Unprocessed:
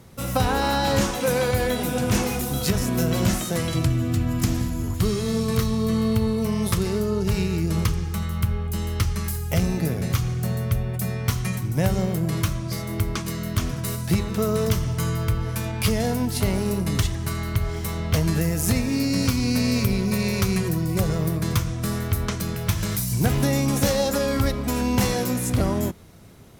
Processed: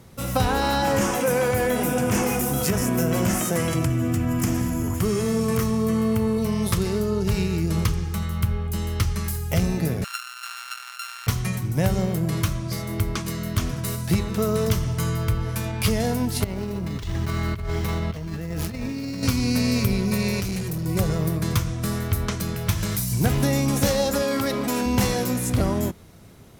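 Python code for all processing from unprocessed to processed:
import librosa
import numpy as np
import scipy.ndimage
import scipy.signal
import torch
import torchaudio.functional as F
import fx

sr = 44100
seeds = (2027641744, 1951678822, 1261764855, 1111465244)

y = fx.chain(x, sr, fx.highpass(hz=140.0, slope=6),
    fx.peak_eq(hz=4000.0, db=-12.5, octaves=0.51),
    fx.env_flatten(amount_pct=50), at=(0.82, 6.38))
y = fx.chain(y, sr, fx.sample_sort(block=32),
    fx.highpass(hz=1300.0, slope=24),
    fx.high_shelf(hz=12000.0, db=-8.0), at=(10.04, 11.27))
y = fx.chain(y, sr, fx.median_filter(points=5),
    fx.over_compress(threshold_db=-28.0, ratio=-1.0), at=(16.44, 19.23))
y = fx.chain(y, sr, fx.peak_eq(hz=680.0, db=-9.0, octaves=2.5),
    fx.clip_hard(threshold_db=-24.0), at=(20.4, 20.86))
y = fx.chain(y, sr, fx.highpass(hz=210.0, slope=12),
    fx.env_flatten(amount_pct=70), at=(24.22, 24.86))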